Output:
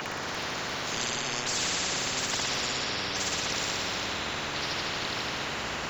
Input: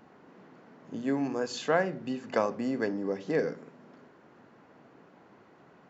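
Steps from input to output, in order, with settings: bin magnitudes rounded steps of 30 dB; bell 1100 Hz +6 dB 2.1 oct; negative-ratio compressor -37 dBFS, ratio -1; on a send: flutter echo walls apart 10 m, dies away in 1.2 s; on the sum: echoes that change speed 0.347 s, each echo -5 st, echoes 3, each echo -6 dB; spectral compressor 10:1; gain +6 dB

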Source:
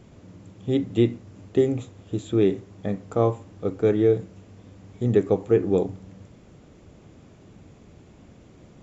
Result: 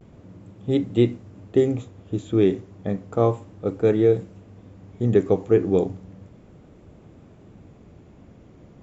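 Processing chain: vibrato 0.32 Hz 31 cents; mismatched tape noise reduction decoder only; gain +1.5 dB

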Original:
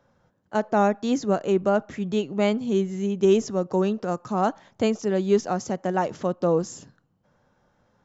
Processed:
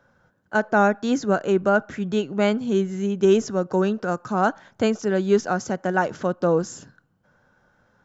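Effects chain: bell 1500 Hz +11 dB 0.28 oct; gain +1.5 dB

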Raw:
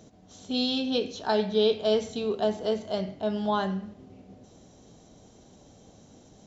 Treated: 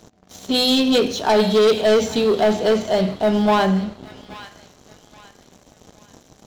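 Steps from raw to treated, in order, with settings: notches 50/100/150/200/250/300 Hz; sample leveller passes 3; thin delay 0.826 s, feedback 34%, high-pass 1400 Hz, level -13 dB; gain +2.5 dB

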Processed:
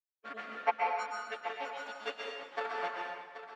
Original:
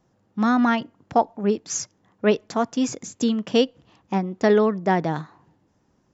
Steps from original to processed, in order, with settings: frequency quantiser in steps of 4 st; spectral noise reduction 29 dB; added harmonics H 3 -11 dB, 7 -33 dB, 8 -28 dB, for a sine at -5 dBFS; time stretch by phase-locked vocoder 0.58×; rotary speaker horn 1 Hz; in parallel at -4.5 dB: decimation with a swept rate 9×, swing 160% 1.2 Hz; on the sum: BPF 720–2200 Hz; on a send: echo 0.78 s -11 dB; on the sum: plate-style reverb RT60 1.2 s, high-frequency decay 0.95×, pre-delay 0.11 s, DRR -1.5 dB; gain -5.5 dB

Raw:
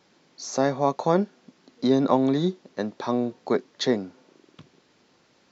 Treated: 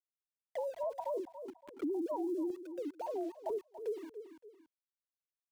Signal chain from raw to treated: sine-wave speech; rippled Chebyshev low-pass 990 Hz, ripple 9 dB; chopper 1.2 Hz, depth 60%, duty 20%; sample gate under -54 dBFS; limiter -31.5 dBFS, peak gain reduction 11.5 dB; on a send: feedback echo 0.283 s, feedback 17%, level -15 dB; on the sum: three-band squash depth 70%; gain +1.5 dB

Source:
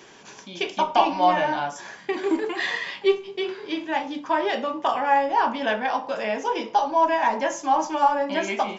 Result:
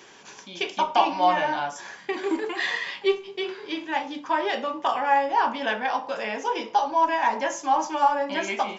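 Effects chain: low shelf 380 Hz -5.5 dB; notch 640 Hz, Q 18

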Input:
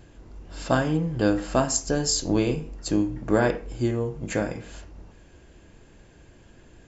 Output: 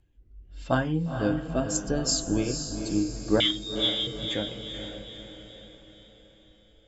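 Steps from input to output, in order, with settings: per-bin expansion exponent 1.5; rotary speaker horn 0.85 Hz, later 6 Hz, at 3.29; 3.4–4.07 inverted band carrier 3700 Hz; diffused feedback echo 0.478 s, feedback 50%, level -7 dB

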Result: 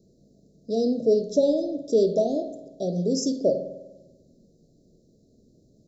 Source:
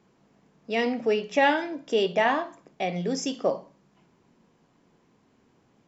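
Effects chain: Chebyshev band-stop 640–4000 Hz, order 5; low shelf 91 Hz +10.5 dB; spring tank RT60 1.1 s, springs 49 ms, DRR 10 dB; gain +3.5 dB

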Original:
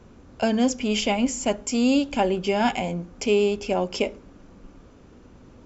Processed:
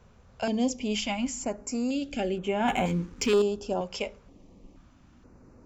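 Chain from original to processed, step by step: 1.45–2.02 compressor 2:1, threshold -23 dBFS, peak gain reduction 4.5 dB; 2.68–3.42 sample leveller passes 2; stepped notch 2.1 Hz 300–4900 Hz; gain -5 dB

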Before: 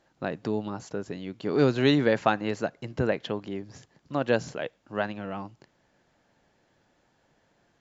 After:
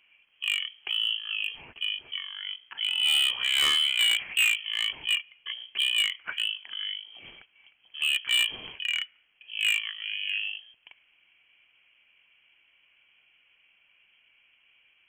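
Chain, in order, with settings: bell 1400 Hz +13 dB 2 oct; wide varispeed 0.517×; inverted band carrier 3200 Hz; overloaded stage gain 15.5 dB; gain -3.5 dB

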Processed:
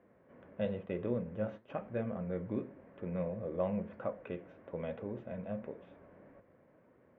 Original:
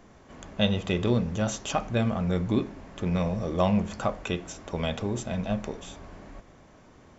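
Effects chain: 0.65–1.78 gate -33 dBFS, range -14 dB; flange 1 Hz, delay 2.1 ms, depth 8.8 ms, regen +81%; speaker cabinet 110–2100 Hz, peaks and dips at 520 Hz +9 dB, 800 Hz -5 dB, 1200 Hz -4 dB; gain -7 dB

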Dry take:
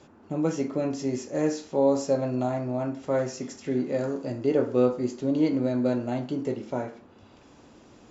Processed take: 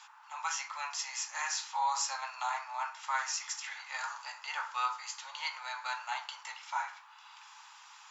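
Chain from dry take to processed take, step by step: Chebyshev high-pass 860 Hz, order 6; gain +7 dB

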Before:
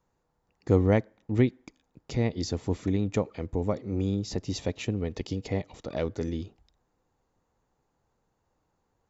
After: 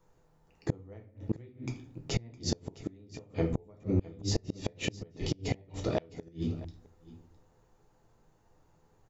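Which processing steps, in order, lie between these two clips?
in parallel at 0 dB: compressor 20:1, threshold -31 dBFS, peak gain reduction 16.5 dB; on the sum: shoebox room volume 37 m³, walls mixed, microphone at 0.59 m; flipped gate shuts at -14 dBFS, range -31 dB; echo 0.661 s -19 dB; gain -2.5 dB

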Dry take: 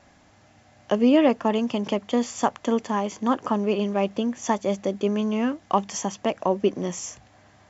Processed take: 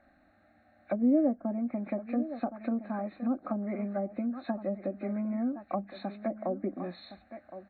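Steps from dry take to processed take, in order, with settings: nonlinear frequency compression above 1400 Hz 1.5:1; fixed phaser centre 650 Hz, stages 8; on a send: echo 1.065 s -13.5 dB; on the sum: treble ducked by the level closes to 580 Hz, closed at -21 dBFS; gain -5.5 dB

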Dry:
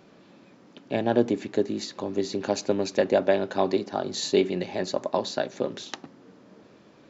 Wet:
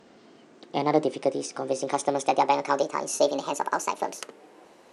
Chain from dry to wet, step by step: speed glide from 119% -> 169%

